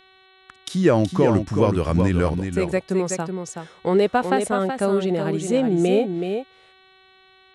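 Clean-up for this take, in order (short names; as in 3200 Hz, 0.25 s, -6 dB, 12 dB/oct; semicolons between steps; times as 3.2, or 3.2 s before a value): de-hum 378.1 Hz, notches 11; inverse comb 0.375 s -6.5 dB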